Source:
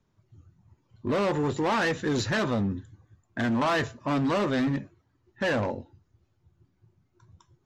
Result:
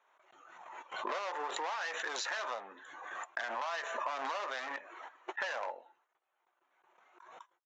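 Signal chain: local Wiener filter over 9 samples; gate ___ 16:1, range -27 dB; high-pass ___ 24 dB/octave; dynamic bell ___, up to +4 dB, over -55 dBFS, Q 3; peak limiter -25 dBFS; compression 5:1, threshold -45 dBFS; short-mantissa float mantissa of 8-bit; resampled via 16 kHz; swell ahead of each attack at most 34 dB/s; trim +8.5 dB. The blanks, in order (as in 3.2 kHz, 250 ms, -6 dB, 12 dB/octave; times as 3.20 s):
-60 dBFS, 690 Hz, 6.1 kHz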